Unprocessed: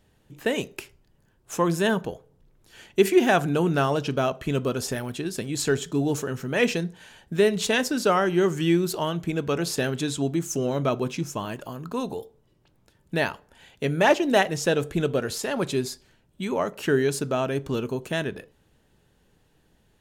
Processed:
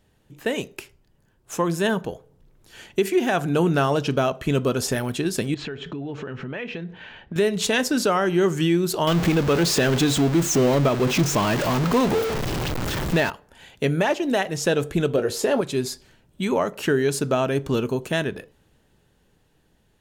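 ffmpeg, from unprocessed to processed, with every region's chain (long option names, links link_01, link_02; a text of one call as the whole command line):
ffmpeg -i in.wav -filter_complex "[0:a]asettb=1/sr,asplit=3[link_01][link_02][link_03];[link_01]atrim=end=5.544[link_04];[link_02]atrim=start=5.54:end=7.36,asetpts=PTS-STARTPTS,afade=type=in:duration=0.004:curve=qsin,afade=type=out:start_time=1.816:duration=0.004:curve=qsin,lowpass=frequency=2800:width=0.5412,lowpass=frequency=2800:width=1.3066,aemphasis=mode=production:type=75fm,acompressor=threshold=-35dB:ratio=8:attack=3.2:release=140:knee=1:detection=peak[link_05];[link_03]atrim=start=7.356[link_06];[link_04][link_05]acrossfade=duration=0.004:curve1=hsin:curve2=qsin[link_07];[link_07][link_06]acrossfade=duration=0.004:curve1=qsin:curve2=hsin,asettb=1/sr,asplit=3[link_08][link_09][link_10];[link_08]atrim=end=9.074[link_11];[link_09]atrim=start=9.07:end=13.3,asetpts=PTS-STARTPTS,afade=type=in:duration=0.004:curve=qsin,afade=type=out:start_time=4.226:duration=0.004:curve=qsin,aeval=exprs='val(0)+0.5*0.0562*sgn(val(0))':channel_layout=same,equalizer=frequency=11000:width_type=o:width=0.83:gain=-8[link_12];[link_10]atrim=start=13.296[link_13];[link_11][link_12]acrossfade=duration=0.004:curve1=hsin:curve2=qsin[link_14];[link_14][link_13]acrossfade=duration=0.004:curve1=qsin:curve2=hsin,asettb=1/sr,asplit=3[link_15][link_16][link_17];[link_15]atrim=end=15.164[link_18];[link_16]atrim=start=15.16:end=15.61,asetpts=PTS-STARTPTS,afade=type=in:duration=0.004:curve=qsin,afade=type=out:start_time=0.446:duration=0.004:curve=qsin,equalizer=frequency=430:width_type=o:width=1.4:gain=9.5,asplit=2[link_19][link_20];[link_20]adelay=19,volume=-9dB[link_21];[link_19][link_21]amix=inputs=2:normalize=0,atrim=end_sample=19845[link_22];[link_17]atrim=start=15.606[link_23];[link_18][link_22]acrossfade=duration=0.004:curve1=hsin:curve2=qsin[link_24];[link_24][link_23]acrossfade=duration=0.004:curve1=qsin:curve2=hsin,dynaudnorm=framelen=340:gausssize=13:maxgain=9dB,alimiter=limit=-11dB:level=0:latency=1:release=408" out.wav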